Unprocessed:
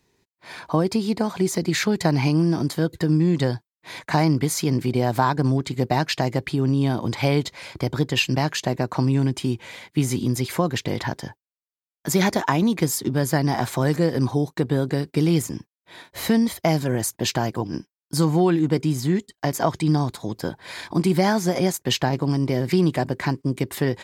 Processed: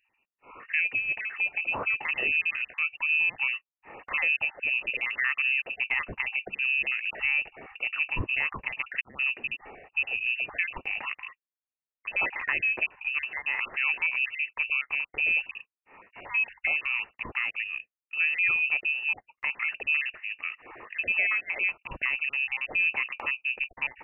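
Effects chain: random spectral dropouts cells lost 21%; inverted band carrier 2800 Hz; transient shaper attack -1 dB, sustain +3 dB; gain -6.5 dB

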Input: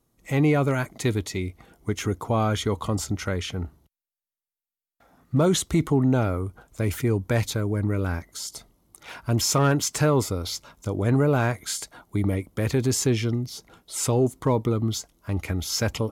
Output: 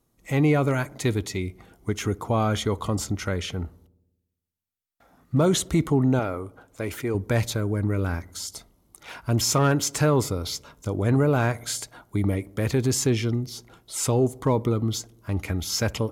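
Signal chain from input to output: 6.19–7.15 tone controls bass -10 dB, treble -4 dB; on a send: darkening echo 60 ms, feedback 71%, low-pass 1400 Hz, level -22 dB

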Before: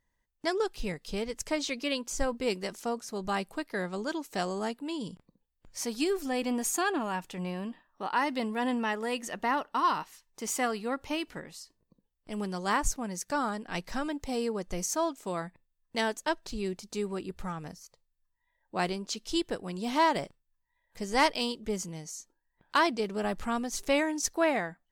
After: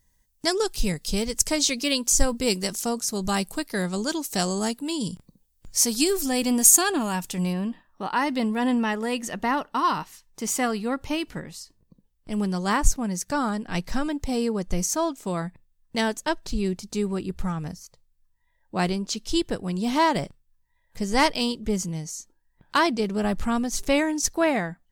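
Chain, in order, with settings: tone controls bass +9 dB, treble +15 dB, from 7.52 s treble +3 dB; gain +3.5 dB

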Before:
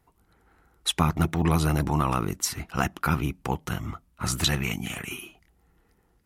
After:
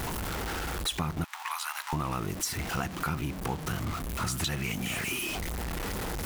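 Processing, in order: zero-crossing step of -27.5 dBFS; 1.24–1.93 elliptic high-pass 920 Hz, stop band 70 dB; compressor 3:1, threshold -31 dBFS, peak gain reduction 11.5 dB

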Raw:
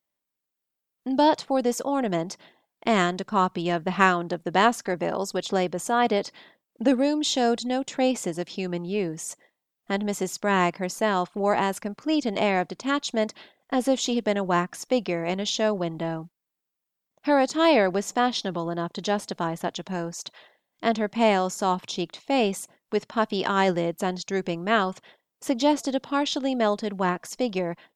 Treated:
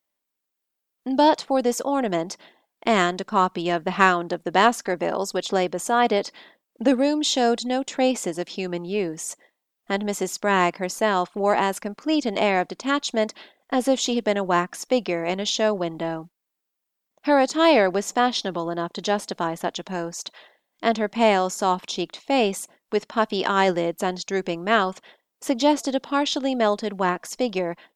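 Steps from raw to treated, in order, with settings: in parallel at -8 dB: one-sided clip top -13 dBFS; on the sum: bell 120 Hz -13 dB 0.78 oct

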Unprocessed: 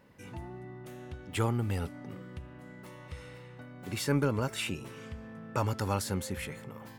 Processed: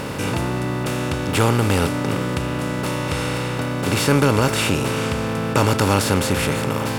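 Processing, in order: per-bin compression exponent 0.4; gain +9 dB

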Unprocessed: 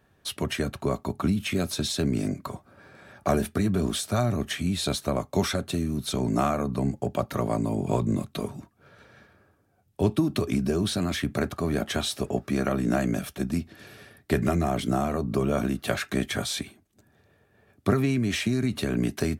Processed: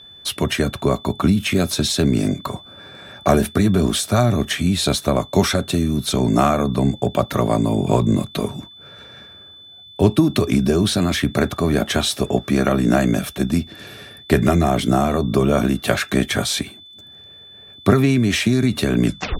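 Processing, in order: tape stop at the end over 0.34 s; whine 3500 Hz -49 dBFS; gain +8.5 dB

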